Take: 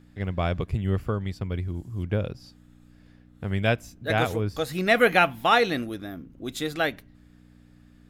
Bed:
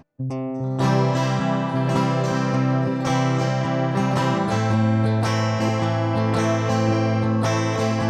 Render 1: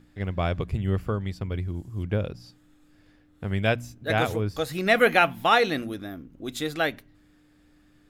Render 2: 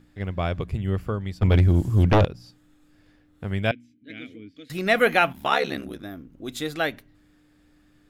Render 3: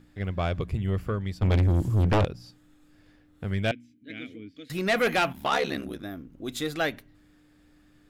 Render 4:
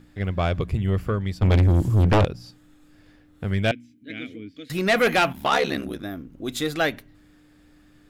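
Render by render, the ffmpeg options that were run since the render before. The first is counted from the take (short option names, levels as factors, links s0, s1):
-af "bandreject=f=60:t=h:w=4,bandreject=f=120:t=h:w=4,bandreject=f=180:t=h:w=4,bandreject=f=240:t=h:w=4"
-filter_complex "[0:a]asettb=1/sr,asplit=3[s0][s1][s2];[s0]atrim=end=1.424[s3];[s1]atrim=start=1.42:end=2.25,asetpts=PTS-STARTPTS,afade=t=in:d=0.004:c=qsin,afade=t=out:st=0.826:d=0.004:c=qsin,aeval=exprs='0.251*sin(PI/2*3.55*val(0)/0.251)':c=same[s4];[s2]atrim=start=2.246[s5];[s3][s4]acrossfade=d=0.004:c1=hsin:c2=qsin[s6];[s6][s5]acrossfade=d=0.004:c1=qsin:c2=hsin,asettb=1/sr,asplit=3[s7][s8][s9];[s7]atrim=end=3.714[s10];[s8]atrim=start=3.71:end=4.7,asetpts=PTS-STARTPTS,afade=t=in:d=0.004:c=qsin,afade=t=out:st=0.986:d=0.004:c=qsin,asplit=3[s11][s12][s13];[s11]bandpass=f=270:t=q:w=8,volume=1[s14];[s12]bandpass=f=2290:t=q:w=8,volume=0.501[s15];[s13]bandpass=f=3010:t=q:w=8,volume=0.355[s16];[s14][s15][s16]amix=inputs=3:normalize=0[s17];[s9]atrim=start=4.696[s18];[s10][s17]acrossfade=d=0.004:c1=hsin:c2=qsin[s19];[s19][s18]acrossfade=d=0.004:c1=qsin:c2=hsin,asplit=3[s20][s21][s22];[s20]afade=t=out:st=5.32:d=0.02[s23];[s21]aeval=exprs='val(0)*sin(2*PI*35*n/s)':c=same,afade=t=in:st=5.32:d=0.02,afade=t=out:st=6.02:d=0.02[s24];[s22]afade=t=in:st=6.02:d=0.02[s25];[s23][s24][s25]amix=inputs=3:normalize=0"
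-af "asoftclip=type=tanh:threshold=0.126"
-af "volume=1.68"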